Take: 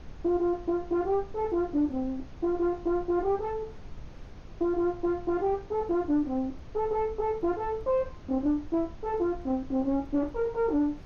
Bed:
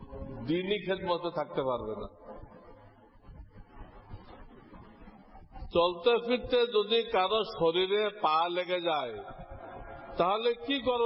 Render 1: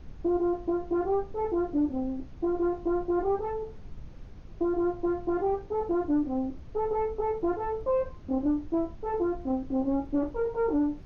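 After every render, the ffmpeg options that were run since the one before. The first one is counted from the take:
ffmpeg -i in.wav -af "afftdn=noise_reduction=6:noise_floor=-44" out.wav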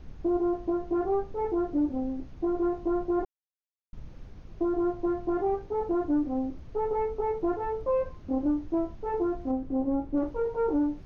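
ffmpeg -i in.wav -filter_complex "[0:a]asettb=1/sr,asplit=3[link_01][link_02][link_03];[link_01]atrim=end=9.514[link_04];[link_02]atrim=start=9.51:end=10.17,asetpts=PTS-STARTPTS,afade=type=in:duration=0.004:curve=qsin,afade=type=out:start_time=0.656:duration=0.004:curve=qsin,highshelf=frequency=2300:gain=-10[link_05];[link_03]atrim=start=10.166[link_06];[link_04][link_05]acrossfade=duration=0.004:curve1=hsin:curve2=qsin[link_07];[link_07][link_06]acrossfade=duration=0.004:curve1=qsin:curve2=hsin,asplit=3[link_08][link_09][link_10];[link_08]atrim=end=3.25,asetpts=PTS-STARTPTS,afade=type=out:start_time=3.246:duration=0.004:curve=hsin[link_11];[link_09]atrim=start=3.25:end=3.93,asetpts=PTS-STARTPTS,volume=0[link_12];[link_10]atrim=start=3.93,asetpts=PTS-STARTPTS,afade=type=in:duration=0.004:curve=hsin[link_13];[link_11][link_12][link_13]concat=n=3:v=0:a=1" out.wav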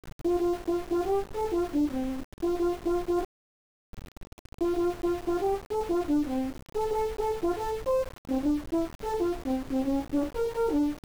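ffmpeg -i in.wav -af "aeval=exprs='val(0)*gte(abs(val(0)),0.0126)':channel_layout=same" out.wav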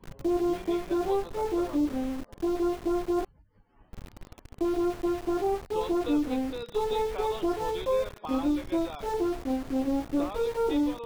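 ffmpeg -i in.wav -i bed.wav -filter_complex "[1:a]volume=-11.5dB[link_01];[0:a][link_01]amix=inputs=2:normalize=0" out.wav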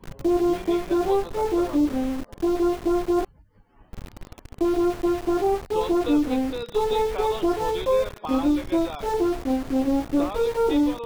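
ffmpeg -i in.wav -af "volume=5.5dB" out.wav

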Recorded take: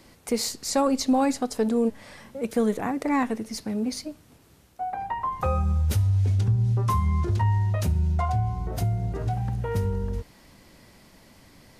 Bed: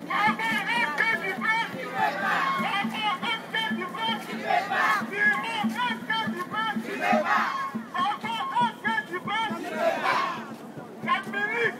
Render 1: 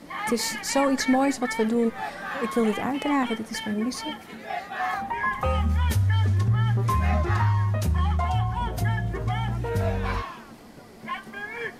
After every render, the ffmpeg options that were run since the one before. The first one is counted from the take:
ffmpeg -i in.wav -i bed.wav -filter_complex "[1:a]volume=-7.5dB[link_01];[0:a][link_01]amix=inputs=2:normalize=0" out.wav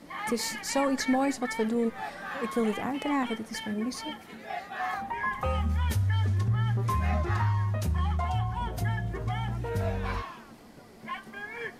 ffmpeg -i in.wav -af "volume=-4.5dB" out.wav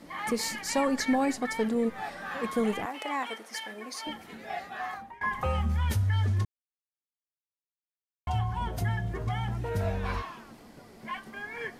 ffmpeg -i in.wav -filter_complex "[0:a]asettb=1/sr,asplit=3[link_01][link_02][link_03];[link_01]atrim=end=2.854[link_04];[link_02]atrim=start=2.85:end=4.07,asetpts=PTS-STARTPTS,afade=type=in:duration=0.004:curve=qsin,afade=type=out:start_time=1.216:duration=0.004:curve=qsin,highpass=550[link_05];[link_03]atrim=start=4.066[link_06];[link_04][link_05]acrossfade=duration=0.004:curve1=hsin:curve2=qsin[link_07];[link_07][link_06]acrossfade=duration=0.004:curve1=qsin:curve2=hsin,asplit=4[link_08][link_09][link_10][link_11];[link_08]atrim=end=5.21,asetpts=PTS-STARTPTS,afade=type=out:start_time=4.63:duration=0.58:silence=0.1[link_12];[link_09]atrim=start=5.21:end=6.45,asetpts=PTS-STARTPTS,afade=type=in:duration=0.004:curve=hsin:silence=0.1,afade=type=out:start_time=1.236:duration=0.004:curve=hsin[link_13];[link_10]atrim=start=6.45:end=8.27,asetpts=PTS-STARTPTS,volume=0[link_14];[link_11]atrim=start=8.27,asetpts=PTS-STARTPTS,afade=type=in:duration=0.004:curve=hsin[link_15];[link_12][link_13][link_14][link_15]concat=n=4:v=0:a=1" out.wav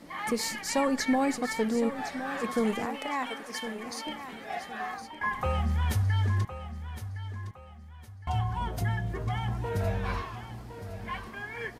ffmpeg -i in.wav -af "aecho=1:1:1062|2124|3186|4248:0.266|0.0931|0.0326|0.0114" out.wav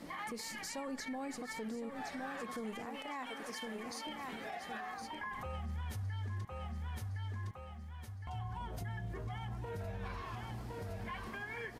ffmpeg -i in.wav -af "acompressor=threshold=-40dB:ratio=2,alimiter=level_in=10dB:limit=-24dB:level=0:latency=1:release=94,volume=-10dB" out.wav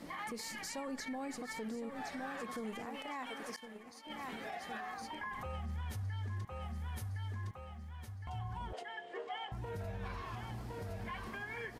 ffmpeg -i in.wav -filter_complex "[0:a]asettb=1/sr,asplit=3[link_01][link_02][link_03];[link_01]atrim=end=3.564[link_04];[link_02]atrim=start=3.56:end=4.1,asetpts=PTS-STARTPTS,afade=type=in:duration=0.004:curve=qsin,afade=type=out:start_time=0.536:duration=0.004:curve=qsin,agate=range=-33dB:threshold=-37dB:ratio=3:release=100:detection=peak[link_05];[link_03]atrim=start=4.096[link_06];[link_04][link_05]acrossfade=duration=0.004:curve1=hsin:curve2=qsin[link_07];[link_07][link_06]acrossfade=duration=0.004:curve1=qsin:curve2=hsin,asettb=1/sr,asplit=3[link_08][link_09][link_10];[link_08]atrim=end=6.624[link_11];[link_09]atrim=start=6.62:end=7.34,asetpts=PTS-STARTPTS,afade=type=in:duration=0.004:curve=qsin,afade=type=out:start_time=0.716:duration=0.004:curve=qsin,equalizer=frequency=11000:width_type=o:width=0.75:gain=5.5[link_12];[link_10]atrim=start=7.336[link_13];[link_11][link_12]acrossfade=duration=0.004:curve1=hsin:curve2=qsin[link_14];[link_14][link_13]acrossfade=duration=0.004:curve1=qsin:curve2=hsin,asettb=1/sr,asplit=3[link_15][link_16][link_17];[link_15]atrim=end=8.734[link_18];[link_16]atrim=start=8.73:end=9.52,asetpts=PTS-STARTPTS,afade=type=in:duration=0.004:curve=qsin,afade=type=out:start_time=0.786:duration=0.004:curve=qsin,highpass=frequency=360:width=0.5412,highpass=frequency=360:width=1.3066,equalizer=frequency=470:width_type=q:width=4:gain=10,equalizer=frequency=770:width_type=q:width=4:gain=6,equalizer=frequency=1900:width_type=q:width=4:gain=5,equalizer=frequency=3000:width_type=q:width=4:gain=10,equalizer=frequency=6100:width_type=q:width=4:gain=-6,lowpass=frequency=7900:width=0.5412,lowpass=frequency=7900:width=1.3066[link_19];[link_17]atrim=start=9.516[link_20];[link_18][link_19]acrossfade=duration=0.004:curve1=hsin:curve2=qsin[link_21];[link_21][link_20]acrossfade=duration=0.004:curve1=qsin:curve2=hsin" out.wav

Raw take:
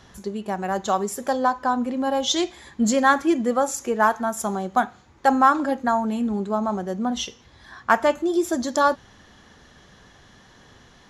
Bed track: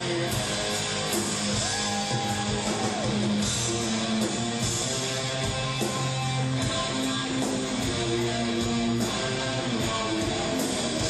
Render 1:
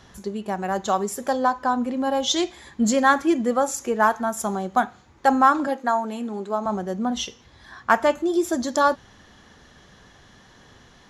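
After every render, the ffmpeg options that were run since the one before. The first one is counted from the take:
ffmpeg -i in.wav -filter_complex "[0:a]asettb=1/sr,asplit=3[link_01][link_02][link_03];[link_01]atrim=end=5.674[link_04];[link_02]atrim=start=5.67:end=6.66,asetpts=PTS-STARTPTS,afade=type=in:duration=0.004:curve=qsin,afade=type=out:start_time=0.986:duration=0.004:curve=qsin,highpass=310[link_05];[link_03]atrim=start=6.656[link_06];[link_04][link_05]acrossfade=duration=0.004:curve1=hsin:curve2=qsin[link_07];[link_07][link_06]acrossfade=duration=0.004:curve1=qsin:curve2=hsin" out.wav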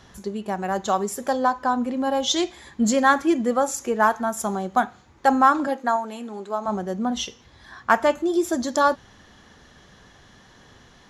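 ffmpeg -i in.wav -filter_complex "[0:a]asettb=1/sr,asplit=3[link_01][link_02][link_03];[link_01]atrim=end=5.964[link_04];[link_02]atrim=start=5.96:end=6.68,asetpts=PTS-STARTPTS,afade=type=in:duration=0.004:curve=qsin,afade=type=out:start_time=0.716:duration=0.004:curve=qsin,lowshelf=frequency=340:gain=-8[link_05];[link_03]atrim=start=6.676[link_06];[link_04][link_05]acrossfade=duration=0.004:curve1=hsin:curve2=qsin[link_07];[link_07][link_06]acrossfade=duration=0.004:curve1=qsin:curve2=hsin" out.wav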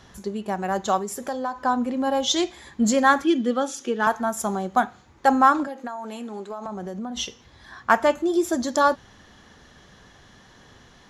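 ffmpeg -i in.wav -filter_complex "[0:a]asettb=1/sr,asplit=3[link_01][link_02][link_03];[link_01]atrim=end=0.984[link_04];[link_02]atrim=start=0.98:end=1.63,asetpts=PTS-STARTPTS,afade=type=in:duration=0.004:curve=qsin,afade=type=out:start_time=0.646:duration=0.004:curve=qsin,acompressor=threshold=-29dB:ratio=2:attack=3.2:release=140:knee=1:detection=peak[link_05];[link_03]atrim=start=1.626[link_06];[link_04][link_05]acrossfade=duration=0.004:curve1=hsin:curve2=qsin[link_07];[link_07][link_06]acrossfade=duration=0.004:curve1=qsin:curve2=hsin,asettb=1/sr,asplit=3[link_08][link_09][link_10];[link_08]atrim=end=3.244[link_11];[link_09]atrim=start=3.24:end=4.07,asetpts=PTS-STARTPTS,afade=type=in:duration=0.004:curve=qsin,afade=type=out:start_time=0.826:duration=0.004:curve=qsin,highpass=210,equalizer=frequency=260:width_type=q:width=4:gain=4,equalizer=frequency=660:width_type=q:width=4:gain=-10,equalizer=frequency=1000:width_type=q:width=4:gain=-9,equalizer=frequency=2100:width_type=q:width=4:gain=-5,equalizer=frequency=3300:width_type=q:width=4:gain=10,equalizer=frequency=7500:width_type=q:width=4:gain=-9,lowpass=frequency=9100:width=0.5412,lowpass=frequency=9100:width=1.3066[link_12];[link_10]atrim=start=4.066[link_13];[link_11][link_12]acrossfade=duration=0.004:curve1=hsin:curve2=qsin[link_14];[link_14][link_13]acrossfade=duration=0.004:curve1=qsin:curve2=hsin,asettb=1/sr,asplit=3[link_15][link_16][link_17];[link_15]atrim=end=5.634[link_18];[link_16]atrim=start=5.63:end=7.18,asetpts=PTS-STARTPTS,afade=type=in:duration=0.004:curve=qsin,afade=type=out:start_time=1.546:duration=0.004:curve=qsin,acompressor=threshold=-28dB:ratio=12:attack=3.2:release=140:knee=1:detection=peak[link_19];[link_17]atrim=start=7.176[link_20];[link_18][link_19]acrossfade=duration=0.004:curve1=hsin:curve2=qsin[link_21];[link_21][link_20]acrossfade=duration=0.004:curve1=qsin:curve2=hsin" out.wav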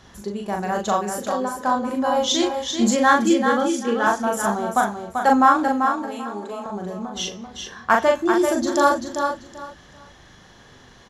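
ffmpeg -i in.wav -filter_complex "[0:a]asplit=2[link_01][link_02];[link_02]adelay=39,volume=-3dB[link_03];[link_01][link_03]amix=inputs=2:normalize=0,aecho=1:1:389|778|1167:0.501|0.11|0.0243" out.wav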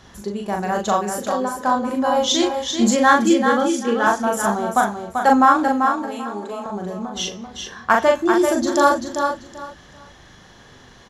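ffmpeg -i in.wav -af "volume=2dB,alimiter=limit=-2dB:level=0:latency=1" out.wav

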